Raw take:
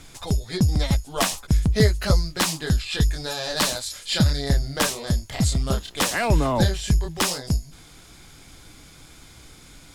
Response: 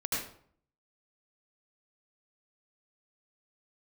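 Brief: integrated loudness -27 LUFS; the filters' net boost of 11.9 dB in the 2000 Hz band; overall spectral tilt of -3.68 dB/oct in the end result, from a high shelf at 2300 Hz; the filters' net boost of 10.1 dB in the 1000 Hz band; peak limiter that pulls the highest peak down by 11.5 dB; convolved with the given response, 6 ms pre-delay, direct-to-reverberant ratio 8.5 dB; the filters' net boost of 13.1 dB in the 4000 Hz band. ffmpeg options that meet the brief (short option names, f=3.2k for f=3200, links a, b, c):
-filter_complex "[0:a]equalizer=f=1k:t=o:g=9,equalizer=f=2k:t=o:g=6.5,highshelf=f=2.3k:g=7.5,equalizer=f=4k:t=o:g=7,alimiter=limit=-7.5dB:level=0:latency=1,asplit=2[a][b];[1:a]atrim=start_sample=2205,adelay=6[c];[b][c]afir=irnorm=-1:irlink=0,volume=-14.5dB[d];[a][d]amix=inputs=2:normalize=0,volume=-8.5dB"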